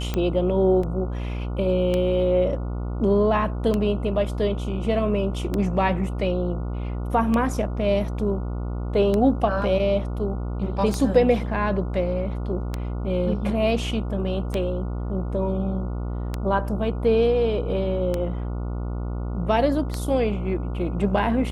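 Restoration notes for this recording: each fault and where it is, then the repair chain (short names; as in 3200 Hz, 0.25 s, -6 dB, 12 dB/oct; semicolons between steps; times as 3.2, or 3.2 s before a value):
buzz 60 Hz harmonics 24 -28 dBFS
tick 33 1/3 rpm -12 dBFS
0.83 gap 4 ms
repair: de-click; de-hum 60 Hz, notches 24; interpolate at 0.83, 4 ms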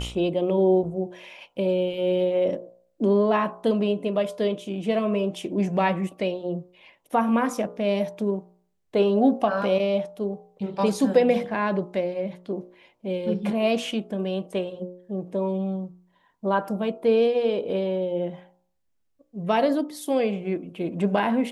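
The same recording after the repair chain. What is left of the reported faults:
none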